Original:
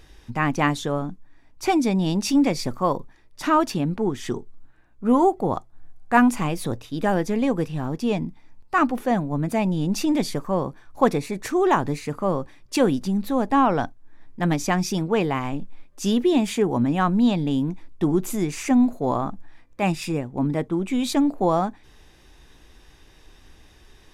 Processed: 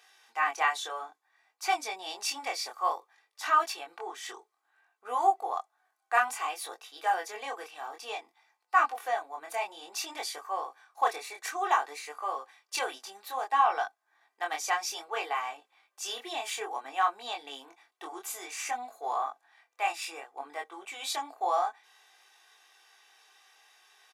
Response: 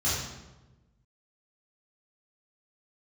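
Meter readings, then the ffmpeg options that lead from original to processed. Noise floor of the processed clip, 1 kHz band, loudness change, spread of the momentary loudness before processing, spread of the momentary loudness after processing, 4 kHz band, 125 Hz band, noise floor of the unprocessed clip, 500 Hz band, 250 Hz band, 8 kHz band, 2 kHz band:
-79 dBFS, -3.5 dB, -9.0 dB, 10 LU, 14 LU, -3.5 dB, under -40 dB, -53 dBFS, -14.0 dB, -33.0 dB, -3.0 dB, -3.0 dB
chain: -af "highpass=f=690:w=0.5412,highpass=f=690:w=1.3066,aecho=1:1:2.6:0.58,flanger=delay=20:depth=6.3:speed=0.58,volume=0.841"

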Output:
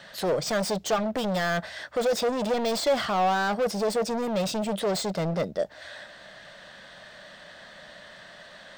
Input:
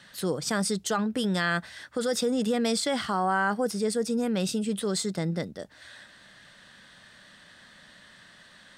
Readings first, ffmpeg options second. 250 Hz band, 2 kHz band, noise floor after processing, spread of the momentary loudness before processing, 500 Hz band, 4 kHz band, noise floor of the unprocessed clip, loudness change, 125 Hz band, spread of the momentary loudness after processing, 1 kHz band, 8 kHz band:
-2.5 dB, -0.5 dB, -48 dBFS, 9 LU, +4.0 dB, +0.5 dB, -54 dBFS, +1.0 dB, -0.5 dB, 21 LU, +3.0 dB, -2.5 dB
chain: -af "volume=33.5,asoftclip=hard,volume=0.0299,equalizer=f=100:t=o:w=0.67:g=-5,equalizer=f=250:t=o:w=0.67:g=-4,equalizer=f=630:t=o:w=0.67:g=11,equalizer=f=10000:t=o:w=0.67:g=-10,volume=1.78"

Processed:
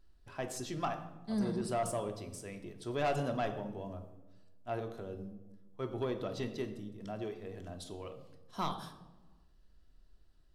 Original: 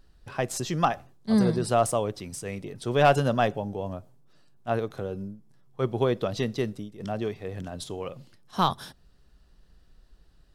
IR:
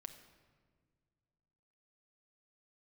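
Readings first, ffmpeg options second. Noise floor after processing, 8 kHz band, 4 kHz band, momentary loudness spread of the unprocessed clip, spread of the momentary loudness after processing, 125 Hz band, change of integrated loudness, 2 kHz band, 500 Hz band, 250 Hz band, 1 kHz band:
-63 dBFS, -10.0 dB, -11.5 dB, 15 LU, 15 LU, -12.0 dB, -11.0 dB, -11.5 dB, -10.5 dB, -10.0 dB, -11.5 dB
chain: -filter_complex "[1:a]atrim=start_sample=2205,asetrate=83790,aresample=44100[s0];[0:a][s0]afir=irnorm=-1:irlink=0,asoftclip=type=tanh:threshold=0.0501,volume=1.12"

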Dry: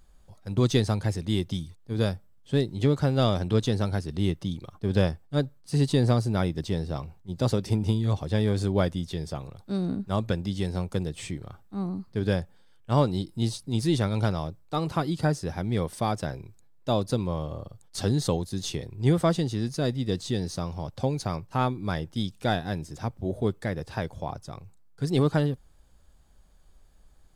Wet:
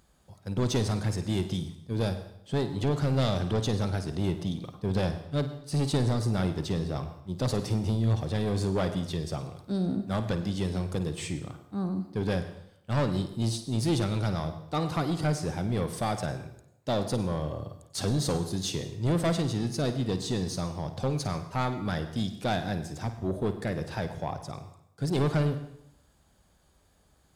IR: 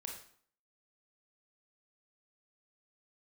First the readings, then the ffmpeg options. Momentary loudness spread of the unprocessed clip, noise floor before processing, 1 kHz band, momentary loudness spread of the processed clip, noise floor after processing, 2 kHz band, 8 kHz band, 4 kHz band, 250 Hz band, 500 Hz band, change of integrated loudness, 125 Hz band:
11 LU, -55 dBFS, -2.0 dB, 9 LU, -64 dBFS, -1.5 dB, +1.5 dB, -1.5 dB, -2.0 dB, -2.5 dB, -2.5 dB, -2.0 dB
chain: -filter_complex "[0:a]highpass=82,asoftclip=type=tanh:threshold=0.0708,asplit=2[s0][s1];[1:a]atrim=start_sample=2205,asetrate=32193,aresample=44100,adelay=53[s2];[s1][s2]afir=irnorm=-1:irlink=0,volume=0.398[s3];[s0][s3]amix=inputs=2:normalize=0,volume=1.19"

